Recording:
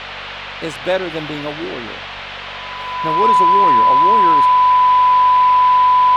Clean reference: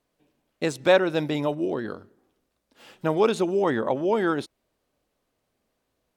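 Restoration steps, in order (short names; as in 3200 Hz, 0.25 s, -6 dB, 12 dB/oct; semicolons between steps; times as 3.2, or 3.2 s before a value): de-hum 48.3 Hz, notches 5; notch 1000 Hz, Q 30; de-plosive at 2.15; noise print and reduce 30 dB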